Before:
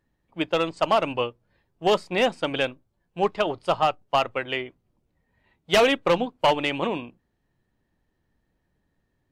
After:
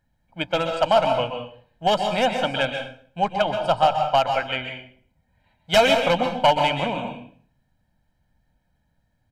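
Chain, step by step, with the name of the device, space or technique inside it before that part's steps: microphone above a desk (comb 1.3 ms, depth 76%; reverberation RT60 0.50 s, pre-delay 119 ms, DRR 4.5 dB)

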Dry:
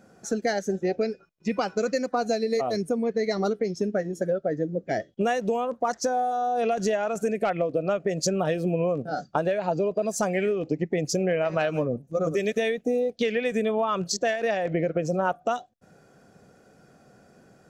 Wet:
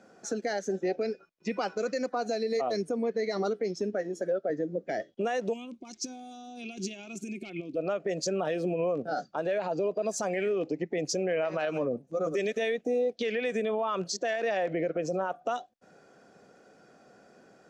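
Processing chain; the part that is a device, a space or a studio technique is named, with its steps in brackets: DJ mixer with the lows and highs turned down (three-band isolator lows -14 dB, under 220 Hz, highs -16 dB, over 8 kHz; peak limiter -21.5 dBFS, peak gain reduction 10.5 dB); 3.93–4.50 s: high-pass 190 Hz; 5.53–7.76 s: time-frequency box 390–2100 Hz -21 dB

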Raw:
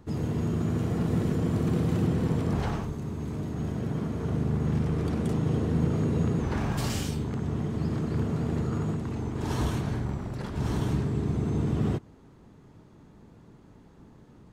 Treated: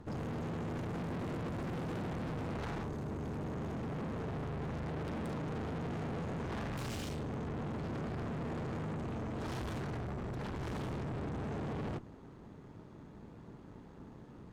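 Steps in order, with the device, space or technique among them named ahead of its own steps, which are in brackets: 4.68–5.49 s: hum notches 50/100/150 Hz; tube preamp driven hard (valve stage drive 41 dB, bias 0.6; bass shelf 190 Hz -3 dB; treble shelf 4.5 kHz -9 dB); trim +5 dB

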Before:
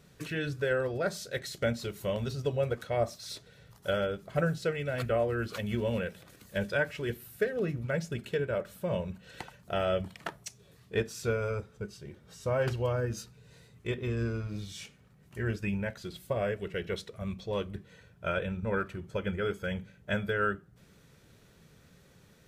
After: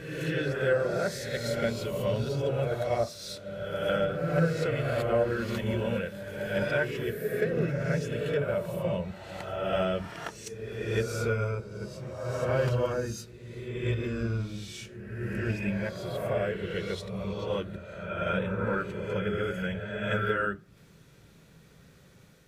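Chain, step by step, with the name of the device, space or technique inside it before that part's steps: reverse reverb (reverse; reverberation RT60 1.7 s, pre-delay 12 ms, DRR -1 dB; reverse); trim -1 dB

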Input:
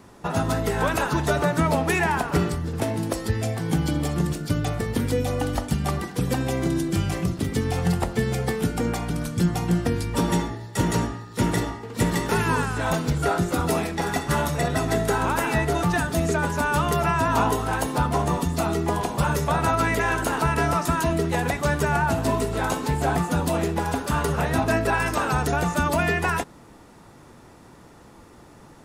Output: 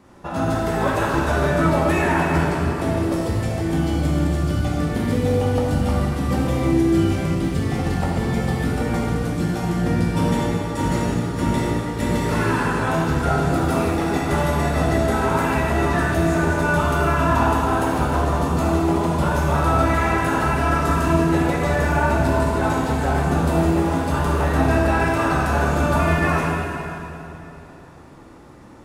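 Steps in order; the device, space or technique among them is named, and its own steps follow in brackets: swimming-pool hall (reverberation RT60 3.0 s, pre-delay 3 ms, DRR -6 dB; treble shelf 4.4 kHz -7 dB); trim -3.5 dB

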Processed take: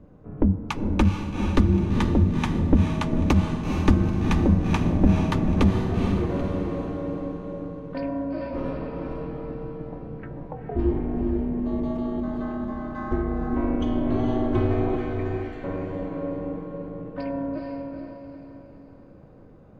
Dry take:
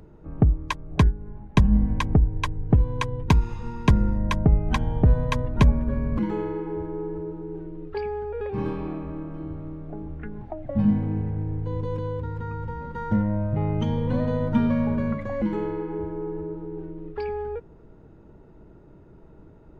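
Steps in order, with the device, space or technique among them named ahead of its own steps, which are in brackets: 14.96–15.64 s: elliptic high-pass 1.5 kHz; alien voice (ring modulator 140 Hz; flange 1.8 Hz, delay 2.6 ms, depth 7.6 ms, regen -64%); echo that smears into a reverb 452 ms, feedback 44%, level -4 dB; FDN reverb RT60 2.5 s, high-frequency decay 0.35×, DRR 13.5 dB; trim +5 dB

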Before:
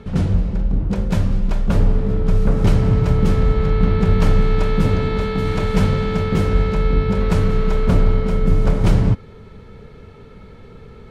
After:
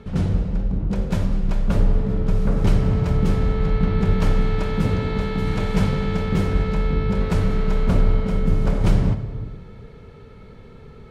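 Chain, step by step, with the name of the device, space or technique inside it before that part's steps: compressed reverb return (on a send at -7 dB: reverberation RT60 1.3 s, pre-delay 50 ms + compression, threshold -12 dBFS, peak gain reduction 7 dB); on the sum: trim -3.5 dB

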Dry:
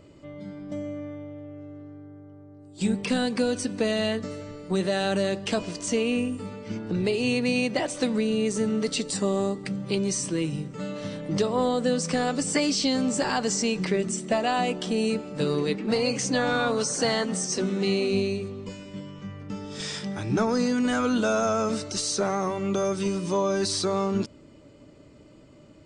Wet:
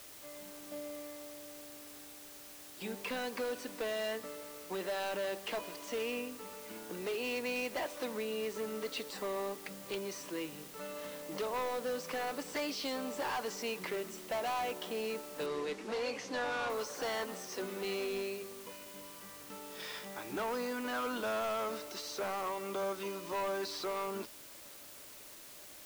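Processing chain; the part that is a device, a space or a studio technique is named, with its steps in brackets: drive-through speaker (band-pass 460–3300 Hz; peaking EQ 1 kHz +4.5 dB 0.28 oct; hard clipper -26.5 dBFS, distortion -10 dB; white noise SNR 13 dB); 15.46–16.70 s: low-pass 6.7 kHz 12 dB/octave; trim -6 dB

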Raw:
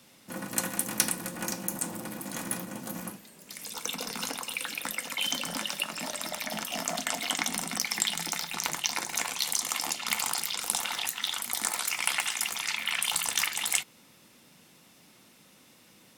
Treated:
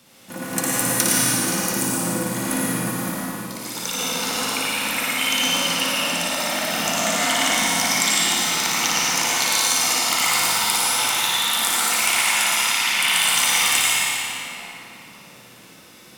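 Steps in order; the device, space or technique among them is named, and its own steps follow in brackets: tunnel (flutter echo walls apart 9.8 m, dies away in 1 s; reverberation RT60 3.3 s, pre-delay 82 ms, DRR -6.5 dB); trim +3 dB

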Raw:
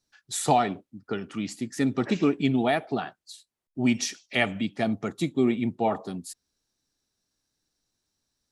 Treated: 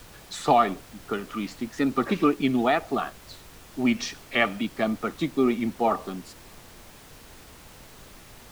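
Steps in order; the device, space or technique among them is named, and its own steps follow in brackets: horn gramophone (band-pass 190–4500 Hz; peaking EQ 1.2 kHz +11.5 dB 0.23 oct; wow and flutter; pink noise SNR 20 dB); trim +1.5 dB

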